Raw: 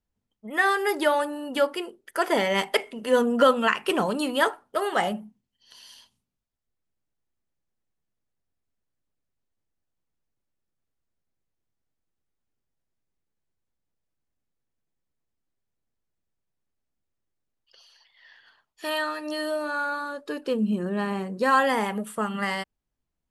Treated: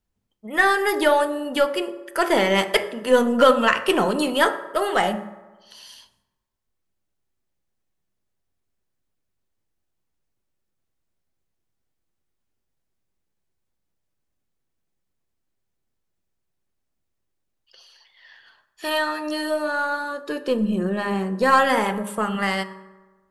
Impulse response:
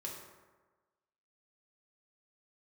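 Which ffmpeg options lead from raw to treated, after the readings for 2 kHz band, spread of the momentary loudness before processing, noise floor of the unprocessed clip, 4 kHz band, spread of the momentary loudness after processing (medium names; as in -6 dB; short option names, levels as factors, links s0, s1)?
+4.0 dB, 10 LU, -82 dBFS, +4.5 dB, 11 LU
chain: -filter_complex "[0:a]aeval=exprs='0.447*(cos(1*acos(clip(val(0)/0.447,-1,1)))-cos(1*PI/2))+0.00794*(cos(4*acos(clip(val(0)/0.447,-1,1)))-cos(4*PI/2))+0.02*(cos(6*acos(clip(val(0)/0.447,-1,1)))-cos(6*PI/2))+0.00282*(cos(8*acos(clip(val(0)/0.447,-1,1)))-cos(8*PI/2))':c=same,bandreject=f=68.13:t=h:w=4,bandreject=f=136.26:t=h:w=4,bandreject=f=204.39:t=h:w=4,bandreject=f=272.52:t=h:w=4,bandreject=f=340.65:t=h:w=4,bandreject=f=408.78:t=h:w=4,bandreject=f=476.91:t=h:w=4,bandreject=f=545.04:t=h:w=4,bandreject=f=613.17:t=h:w=4,bandreject=f=681.3:t=h:w=4,bandreject=f=749.43:t=h:w=4,bandreject=f=817.56:t=h:w=4,bandreject=f=885.69:t=h:w=4,bandreject=f=953.82:t=h:w=4,bandreject=f=1021.95:t=h:w=4,bandreject=f=1090.08:t=h:w=4,bandreject=f=1158.21:t=h:w=4,bandreject=f=1226.34:t=h:w=4,bandreject=f=1294.47:t=h:w=4,bandreject=f=1362.6:t=h:w=4,bandreject=f=1430.73:t=h:w=4,bandreject=f=1498.86:t=h:w=4,bandreject=f=1566.99:t=h:w=4,bandreject=f=1635.12:t=h:w=4,bandreject=f=1703.25:t=h:w=4,bandreject=f=1771.38:t=h:w=4,bandreject=f=1839.51:t=h:w=4,bandreject=f=1907.64:t=h:w=4,bandreject=f=1975.77:t=h:w=4,bandreject=f=2043.9:t=h:w=4,asplit=2[s0][s1];[1:a]atrim=start_sample=2205[s2];[s1][s2]afir=irnorm=-1:irlink=0,volume=0.422[s3];[s0][s3]amix=inputs=2:normalize=0,volume=1.33"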